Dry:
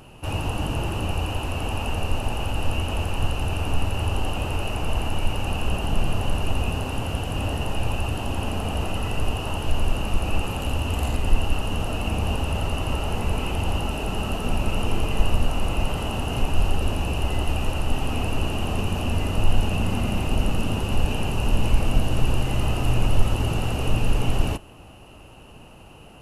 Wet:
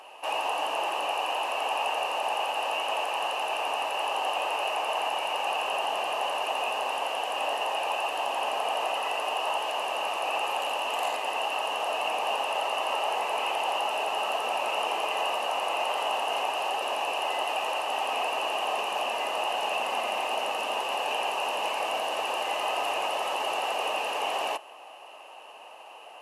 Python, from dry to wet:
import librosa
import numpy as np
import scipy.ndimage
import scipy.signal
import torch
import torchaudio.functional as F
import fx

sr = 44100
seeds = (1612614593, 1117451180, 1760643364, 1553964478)

y = scipy.signal.sosfilt(scipy.signal.butter(4, 680.0, 'highpass', fs=sr, output='sos'), x)
y = fx.tilt_eq(y, sr, slope=-3.0)
y = fx.notch(y, sr, hz=1400.0, q=5.1)
y = y * librosa.db_to_amplitude(6.5)